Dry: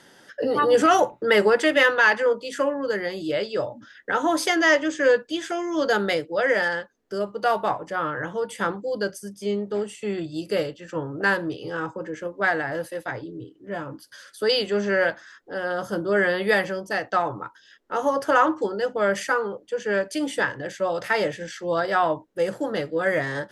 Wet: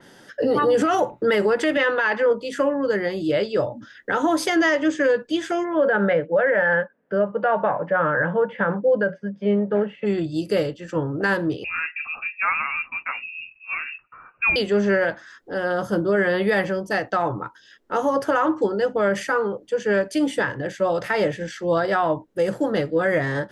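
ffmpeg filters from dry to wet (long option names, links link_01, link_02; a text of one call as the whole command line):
ffmpeg -i in.wav -filter_complex "[0:a]asettb=1/sr,asplit=3[link_01][link_02][link_03];[link_01]atrim=end=1.774[link_04];[link_02]atrim=start=1.77:end=2.31,asetpts=PTS-STARTPTS,afade=type=in:duration=0.004:curve=qsin,afade=type=out:start_time=0.536:duration=0.004:curve=qsin,highpass=160,lowpass=5000[link_05];[link_03]atrim=start=2.306[link_06];[link_04][link_05]acrossfade=duration=0.004:curve1=hsin:curve2=qsin[link_07];[link_07][link_06]acrossfade=duration=0.004:curve1=qsin:curve2=hsin,asplit=3[link_08][link_09][link_10];[link_08]afade=type=out:start_time=5.63:duration=0.02[link_11];[link_09]highpass=150,equalizer=frequency=170:width_type=q:width=4:gain=8,equalizer=frequency=350:width_type=q:width=4:gain=-6,equalizer=frequency=560:width_type=q:width=4:gain=10,equalizer=frequency=920:width_type=q:width=4:gain=3,equalizer=frequency=1600:width_type=q:width=4:gain=9,lowpass=frequency=2700:width=0.5412,lowpass=frequency=2700:width=1.3066,afade=type=in:start_time=5.63:duration=0.02,afade=type=out:start_time=10.05:duration=0.02[link_12];[link_10]afade=type=in:start_time=10.05:duration=0.02[link_13];[link_11][link_12][link_13]amix=inputs=3:normalize=0,asettb=1/sr,asplit=3[link_14][link_15][link_16];[link_14]atrim=end=11.644[link_17];[link_15]atrim=start=11.64:end=14.56,asetpts=PTS-STARTPTS,afade=type=in:duration=0.004:curve=qsin,afade=type=out:start_time=2.916:duration=0.004:curve=qsin,lowpass=frequency=2500:width_type=q:width=0.5098,lowpass=frequency=2500:width_type=q:width=0.6013,lowpass=frequency=2500:width_type=q:width=0.9,lowpass=frequency=2500:width_type=q:width=2.563,afreqshift=-2900[link_18];[link_16]atrim=start=14.556[link_19];[link_17][link_18]acrossfade=duration=0.004:curve1=hsin:curve2=qsin[link_20];[link_20][link_19]acrossfade=duration=0.004:curve1=qsin:curve2=hsin,lowshelf=frequency=360:gain=6,alimiter=limit=-13.5dB:level=0:latency=1:release=68,adynamicequalizer=threshold=0.00794:dfrequency=3500:dqfactor=0.7:tfrequency=3500:tqfactor=0.7:attack=5:release=100:ratio=0.375:range=2.5:mode=cutabove:tftype=highshelf,volume=2dB" out.wav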